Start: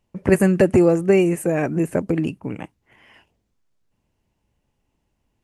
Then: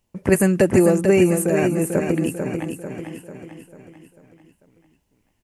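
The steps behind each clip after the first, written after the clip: high shelf 5400 Hz +10.5 dB; on a send: feedback echo 0.444 s, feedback 50%, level -6.5 dB; on the sum: gain -1 dB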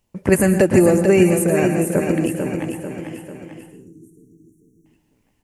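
spectral delete 3.71–4.86, 460–5500 Hz; on a send at -8 dB: reverb RT60 0.45 s, pre-delay 0.108 s; on the sum: gain +1.5 dB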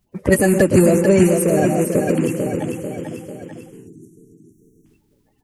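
bin magnitudes rounded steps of 30 dB; in parallel at -8.5 dB: soft clip -20 dBFS, distortion -6 dB

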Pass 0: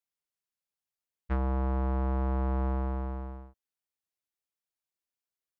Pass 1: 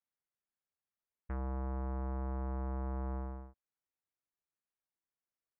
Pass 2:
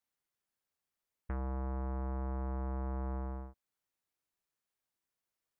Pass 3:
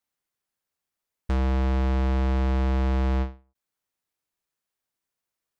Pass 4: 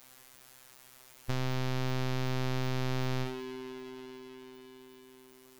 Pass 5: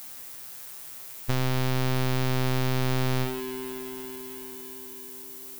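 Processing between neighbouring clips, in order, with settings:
LPF 2100 Hz 24 dB/oct; limiter -30 dBFS, peak gain reduction 9 dB; gain -2 dB
compressor 3:1, threshold -41 dBFS, peak gain reduction 4 dB; gain +4.5 dB
sample leveller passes 3; ending taper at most 190 dB/s; gain +9 dB
spring tank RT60 3.2 s, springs 55 ms, chirp 75 ms, DRR 11 dB; power-law curve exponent 0.5; robotiser 129 Hz
added noise violet -49 dBFS; gain +6.5 dB

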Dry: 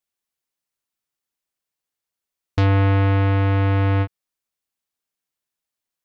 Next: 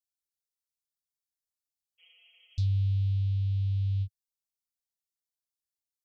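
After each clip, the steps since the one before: spectral repair 2.02–2.63, 350–3300 Hz after; inverse Chebyshev band-stop 240–1700 Hz, stop band 50 dB; gain -7.5 dB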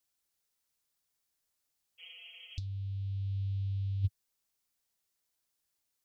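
negative-ratio compressor -33 dBFS, ratio -0.5; gain +1.5 dB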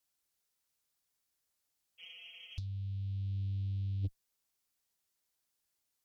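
tube stage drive 29 dB, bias 0.3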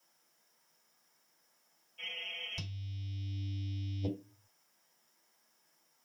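reverb RT60 0.30 s, pre-delay 3 ms, DRR -2.5 dB; gain +6 dB

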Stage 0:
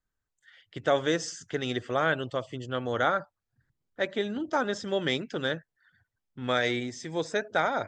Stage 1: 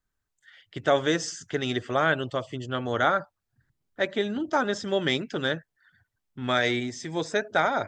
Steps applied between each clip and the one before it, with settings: notch 500 Hz, Q 12; gain +3 dB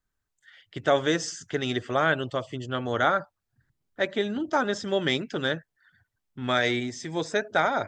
nothing audible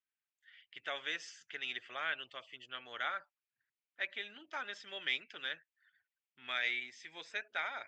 band-pass 2500 Hz, Q 2.9; gain -2 dB

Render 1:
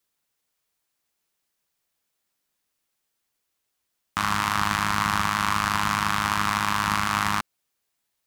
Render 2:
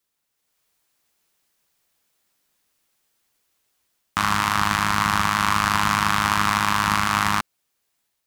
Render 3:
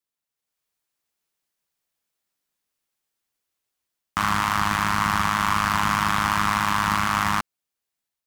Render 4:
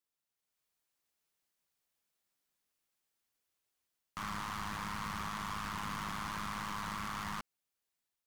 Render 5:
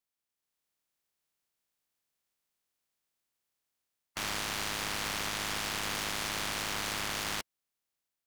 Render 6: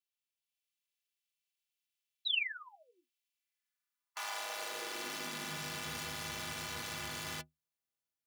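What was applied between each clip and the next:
AGC gain up to 7.5 dB
sample leveller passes 2; gain -7 dB
limiter -17 dBFS, peak gain reduction 8.5 dB; soft clip -31.5 dBFS, distortion -6 dB; gain -3.5 dB
spectral limiter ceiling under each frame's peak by 21 dB; sample leveller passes 1; gain +2 dB
painted sound fall, 2.25–3.05, 280–4100 Hz -32 dBFS; metallic resonator 73 Hz, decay 0.23 s, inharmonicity 0.03; high-pass sweep 2700 Hz -> 100 Hz, 3.31–5.95

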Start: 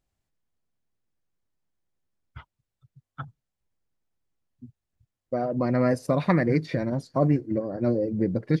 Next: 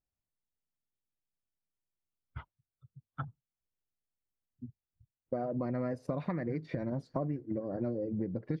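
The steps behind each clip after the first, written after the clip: spectral noise reduction 13 dB; LPF 1600 Hz 6 dB/oct; compressor 10:1, threshold -31 dBFS, peak gain reduction 15 dB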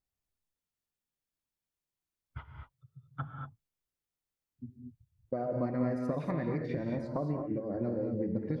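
non-linear reverb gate 0.26 s rising, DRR 2.5 dB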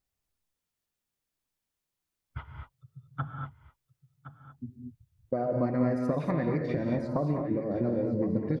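echo 1.066 s -13.5 dB; gain +4.5 dB

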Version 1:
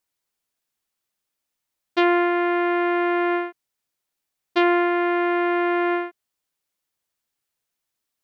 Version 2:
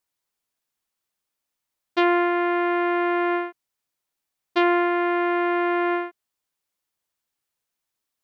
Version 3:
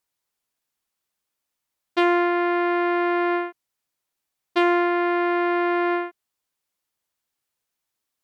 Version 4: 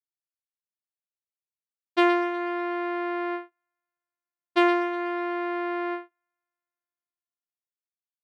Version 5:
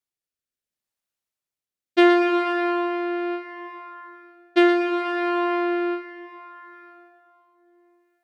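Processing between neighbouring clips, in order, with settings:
bell 1000 Hz +2 dB; gain -1.5 dB
added harmonics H 5 -33 dB, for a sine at -8.5 dBFS
thin delay 0.123 s, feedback 73%, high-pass 2100 Hz, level -10.5 dB; upward expander 2.5:1, over -40 dBFS
plate-style reverb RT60 3.7 s, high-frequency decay 0.8×, DRR 6.5 dB; rotary speaker horn 0.7 Hz; gain +8.5 dB

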